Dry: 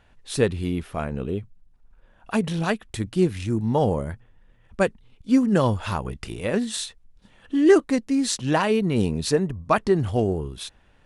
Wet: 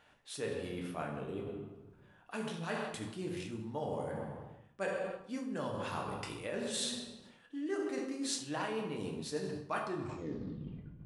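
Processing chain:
turntable brake at the end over 1.21 s
convolution reverb RT60 1.2 s, pre-delay 7 ms, DRR 0.5 dB
reversed playback
downward compressor 6 to 1, threshold −29 dBFS, peak gain reduction 20 dB
reversed playback
high-pass filter 350 Hz 6 dB per octave
level −3.5 dB

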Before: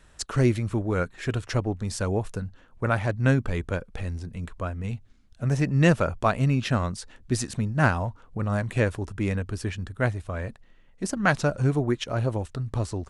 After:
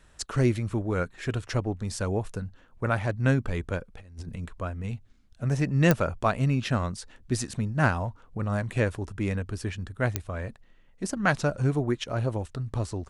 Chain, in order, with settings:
0:03.94–0:04.38: compressor whose output falls as the input rises −37 dBFS, ratio −0.5
digital clicks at 0:05.91/0:10.16, −5 dBFS
level −2 dB

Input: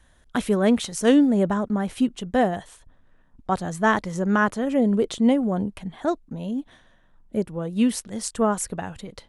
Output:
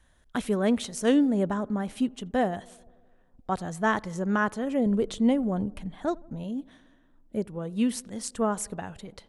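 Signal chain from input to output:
0:04.86–0:06.44: low-shelf EQ 77 Hz +12 dB
tape delay 84 ms, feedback 82%, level −23.5 dB, low-pass 1,200 Hz
level −5 dB

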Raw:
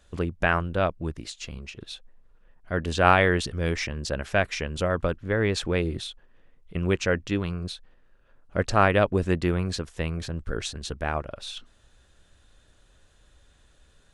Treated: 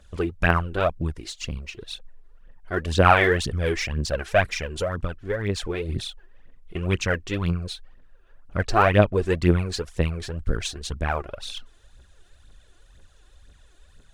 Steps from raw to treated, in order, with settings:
0:04.54–0:05.89: downward compressor, threshold −26 dBFS, peak gain reduction 7 dB
0:08.58–0:09.25: high-shelf EQ 9,300 Hz −10 dB
phase shifter 2 Hz, delay 3 ms, feedback 64%

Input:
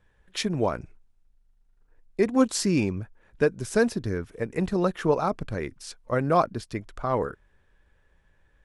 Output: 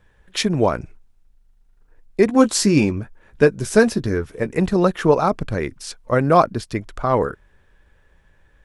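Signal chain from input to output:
0:02.27–0:04.48: double-tracking delay 14 ms −9 dB
level +7.5 dB

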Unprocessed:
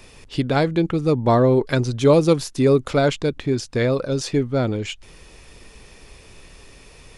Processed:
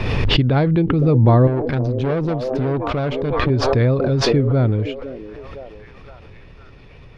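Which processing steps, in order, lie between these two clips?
parametric band 110 Hz +9 dB 1.2 octaves
0:01.47–0:03.50: tube saturation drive 17 dB, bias 0.75
high-frequency loss of the air 300 metres
echo through a band-pass that steps 510 ms, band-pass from 380 Hz, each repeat 0.7 octaves, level −8 dB
background raised ahead of every attack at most 23 dB per second

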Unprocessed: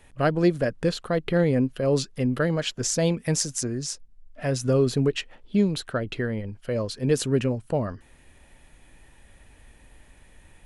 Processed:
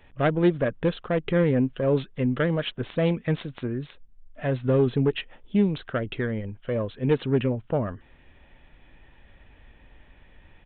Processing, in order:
phase distortion by the signal itself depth 0.19 ms
downsampling to 8,000 Hz

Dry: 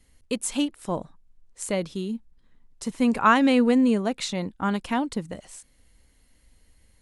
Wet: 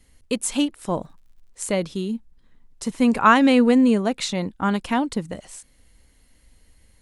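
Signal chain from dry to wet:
0:00.77–0:01.65: surface crackle 67 per second −55 dBFS
level +3.5 dB

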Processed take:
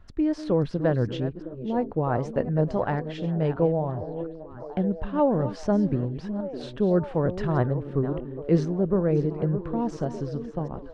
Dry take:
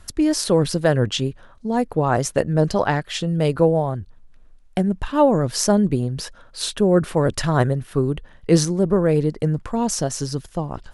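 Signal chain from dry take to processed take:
delay that plays each chunk backwards 356 ms, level −12.5 dB
head-to-tape spacing loss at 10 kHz 35 dB
echo through a band-pass that steps 609 ms, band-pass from 300 Hz, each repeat 0.7 octaves, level −9 dB
level −4.5 dB

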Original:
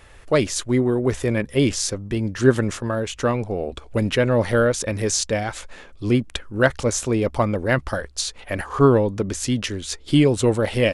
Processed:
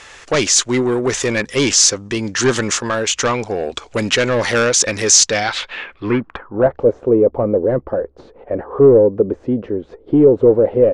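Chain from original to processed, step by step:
mid-hump overdrive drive 21 dB, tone 7,700 Hz, clips at −2 dBFS
low-pass filter sweep 6,700 Hz → 490 Hz, 0:05.25–0:06.84
parametric band 610 Hz −4 dB 0.35 octaves
level −3 dB

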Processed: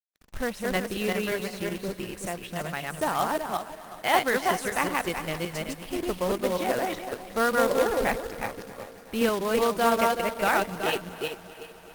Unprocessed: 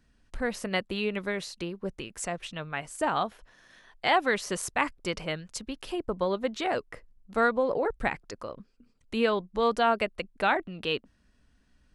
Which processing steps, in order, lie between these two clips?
feedback delay that plays each chunk backwards 188 ms, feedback 43%, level −1 dB
high-shelf EQ 4,800 Hz −5 dB
echo machine with several playback heads 129 ms, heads second and third, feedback 67%, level −20 dB
log-companded quantiser 4 bits
Opus 32 kbit/s 48,000 Hz

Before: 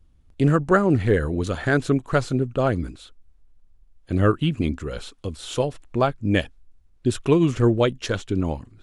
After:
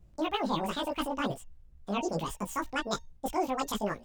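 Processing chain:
reversed playback
downward compressor, threshold −25 dBFS, peak gain reduction 12.5 dB
reversed playback
hum removal 422.2 Hz, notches 7
change of speed 2.18×
multi-voice chorus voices 4, 0.7 Hz, delay 17 ms, depth 2.5 ms

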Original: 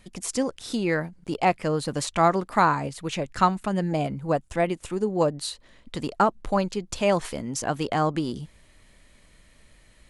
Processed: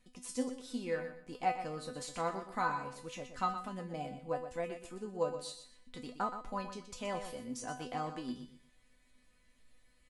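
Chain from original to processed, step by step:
tuned comb filter 250 Hz, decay 0.28 s, harmonics all, mix 90%
repeating echo 122 ms, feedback 26%, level −10 dB
level −2 dB

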